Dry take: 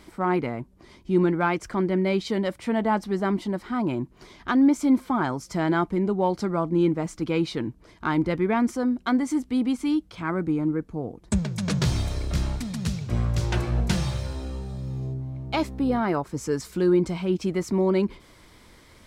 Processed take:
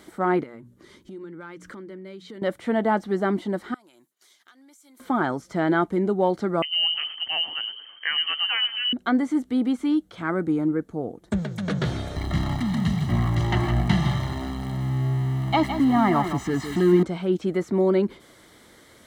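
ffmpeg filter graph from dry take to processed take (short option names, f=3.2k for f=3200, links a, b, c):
-filter_complex "[0:a]asettb=1/sr,asplit=3[a][b][c];[a]atrim=end=0.434[d];[b]atrim=start=0.43:end=2.42,asetpts=PTS-STARTPTS,afade=t=in:d=0.004:c=qsin,afade=t=out:st=1.986:d=0.004:c=qsin,equalizer=f=720:w=4.1:g=-14.5,bandreject=f=60:t=h:w=6,bandreject=f=120:t=h:w=6,bandreject=f=180:t=h:w=6,bandreject=f=240:t=h:w=6,bandreject=f=300:t=h:w=6,acompressor=threshold=-38dB:ratio=8:attack=3.2:release=140:knee=1:detection=peak[e];[c]atrim=start=2.416[f];[d][e]acrossfade=d=0.004:c1=hsin:c2=qsin[g];[g][f]acrossfade=d=0.004:c1=qsin:c2=hsin,asettb=1/sr,asplit=3[h][i][j];[h]atrim=end=3.744[k];[i]atrim=start=3.74:end=5,asetpts=PTS-STARTPTS,afade=t=in:d=0.004:c=qsin,afade=t=out:st=1.256:d=0.004:c=qsin,agate=range=-33dB:threshold=-47dB:ratio=3:release=100:detection=peak,aderivative,acompressor=threshold=-53dB:ratio=5:attack=3.2:release=140:knee=1:detection=peak[l];[j]atrim=start=4.996[m];[k][l]acrossfade=d=0.004:c1=hsin:c2=qsin[n];[n][m]acrossfade=d=0.004:c1=qsin:c2=hsin,asettb=1/sr,asplit=3[o][p][q];[o]atrim=end=6.624[r];[p]atrim=start=6.62:end=8.93,asetpts=PTS-STARTPTS,afade=t=in:d=0.004:c=qsin,afade=t=out:st=2.306:d=0.004:c=qsin,equalizer=f=1k:w=4.3:g=-4.5,asplit=6[s][t][u][v][w][x];[t]adelay=110,afreqshift=-65,volume=-13dB[y];[u]adelay=220,afreqshift=-130,volume=-18.7dB[z];[v]adelay=330,afreqshift=-195,volume=-24.4dB[aa];[w]adelay=440,afreqshift=-260,volume=-30dB[ab];[x]adelay=550,afreqshift=-325,volume=-35.7dB[ac];[s][y][z][aa][ab][ac]amix=inputs=6:normalize=0,atrim=end_sample=101871,lowpass=f=2.7k:t=q:w=0.5098,lowpass=f=2.7k:t=q:w=0.6013,lowpass=f=2.7k:t=q:w=0.9,lowpass=f=2.7k:t=q:w=2.563,afreqshift=-3200[ad];[q]atrim=start=8.926[ae];[r][ad]acrossfade=d=0.004:c1=hsin:c2=qsin[af];[af][ae]acrossfade=d=0.004:c1=qsin:c2=hsin,asettb=1/sr,asplit=3[ag][ah][ai];[ag]atrim=end=12.164[aj];[ah]atrim=start=12.16:end=17.03,asetpts=PTS-STARTPTS,afade=t=in:d=0.004:c=qsin,afade=t=out:st=4.866:d=0.004:c=qsin,aeval=exprs='val(0)+0.5*0.0299*sgn(val(0))':c=same,aecho=1:1:1:0.92,atrim=end_sample=214767,aecho=1:1:161:0.355,atrim=end_sample=214767[ak];[ai]atrim=start=17.026[al];[aj][ak]acrossfade=d=0.004:c1=hsin:c2=qsin[am];[am][al]acrossfade=d=0.004:c1=qsin:c2=hsin,highpass=f=280:p=1,acrossover=split=3600[an][ao];[ao]acompressor=threshold=-55dB:ratio=4:attack=1:release=60[ap];[an][ap]amix=inputs=2:normalize=0,equalizer=f=1k:t=o:w=0.33:g=-8,equalizer=f=2.5k:t=o:w=0.33:g=-10,equalizer=f=5k:t=o:w=0.33:g=-7,volume=4.5dB"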